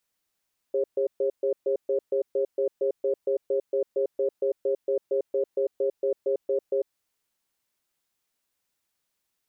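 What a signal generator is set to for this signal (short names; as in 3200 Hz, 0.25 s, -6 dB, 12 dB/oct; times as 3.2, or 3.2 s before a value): cadence 403 Hz, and 543 Hz, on 0.10 s, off 0.13 s, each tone -24.5 dBFS 6.20 s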